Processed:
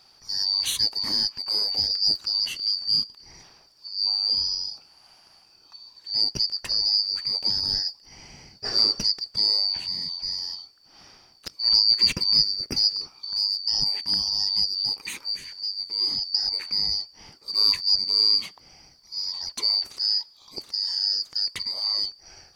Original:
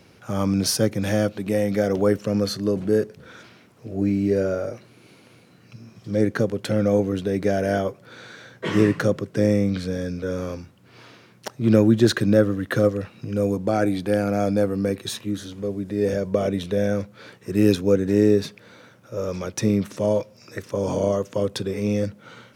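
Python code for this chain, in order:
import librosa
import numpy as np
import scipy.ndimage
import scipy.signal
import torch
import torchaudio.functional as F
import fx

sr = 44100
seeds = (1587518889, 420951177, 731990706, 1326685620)

y = fx.band_shuffle(x, sr, order='2341')
y = F.gain(torch.from_numpy(y), -3.5).numpy()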